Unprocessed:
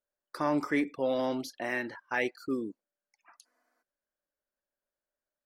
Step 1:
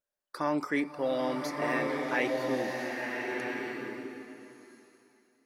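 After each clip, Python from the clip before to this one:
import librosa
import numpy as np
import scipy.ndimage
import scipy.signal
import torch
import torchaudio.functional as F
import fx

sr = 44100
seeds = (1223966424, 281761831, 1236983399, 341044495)

y = fx.low_shelf(x, sr, hz=360.0, db=-3.0)
y = fx.wow_flutter(y, sr, seeds[0], rate_hz=2.1, depth_cents=17.0)
y = fx.rev_bloom(y, sr, seeds[1], attack_ms=1350, drr_db=0.0)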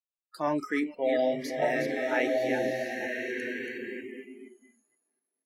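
y = fx.reverse_delay(x, sr, ms=236, wet_db=-5.5)
y = fx.noise_reduce_blind(y, sr, reduce_db=28)
y = fx.peak_eq(y, sr, hz=660.0, db=8.5, octaves=0.35)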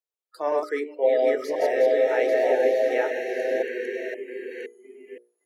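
y = fx.reverse_delay(x, sr, ms=518, wet_db=-1)
y = fx.highpass_res(y, sr, hz=450.0, q=4.9)
y = fx.hum_notches(y, sr, base_hz=60, count=10)
y = F.gain(torch.from_numpy(y), -2.0).numpy()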